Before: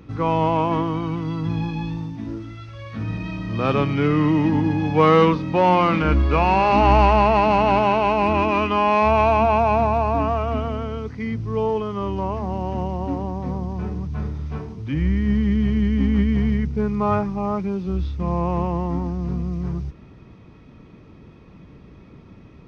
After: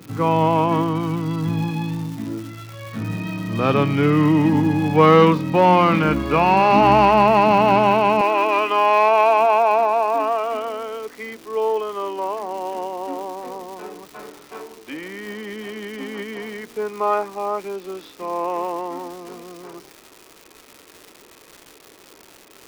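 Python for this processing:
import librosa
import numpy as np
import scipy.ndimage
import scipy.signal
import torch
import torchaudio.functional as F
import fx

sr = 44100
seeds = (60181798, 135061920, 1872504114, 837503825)

y = fx.highpass(x, sr, hz=fx.steps((0.0, 110.0), (8.21, 360.0)), slope=24)
y = fx.dmg_crackle(y, sr, seeds[0], per_s=370.0, level_db=-34.0)
y = F.gain(torch.from_numpy(y), 2.5).numpy()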